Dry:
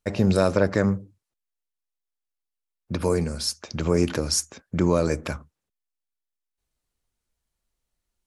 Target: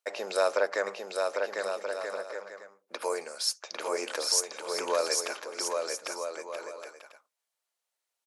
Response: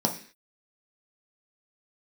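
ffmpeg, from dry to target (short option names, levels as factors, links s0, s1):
-af "highpass=f=520:w=0.5412,highpass=f=520:w=1.3066,aecho=1:1:800|1280|1568|1741|1844:0.631|0.398|0.251|0.158|0.1,volume=0.794"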